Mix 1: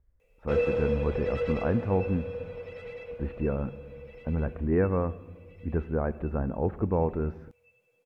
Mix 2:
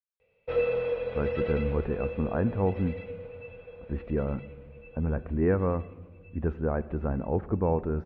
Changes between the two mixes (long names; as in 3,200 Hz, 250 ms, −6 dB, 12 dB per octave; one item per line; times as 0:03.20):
speech: entry +0.70 s
background: add Butterworth low-pass 4,300 Hz 36 dB per octave